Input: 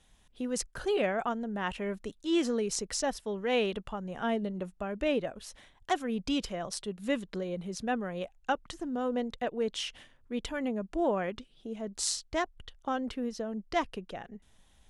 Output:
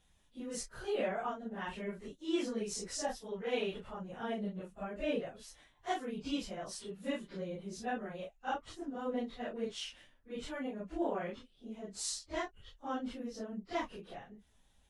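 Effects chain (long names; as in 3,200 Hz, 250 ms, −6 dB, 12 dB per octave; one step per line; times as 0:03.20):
random phases in long frames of 100 ms
level −6.5 dB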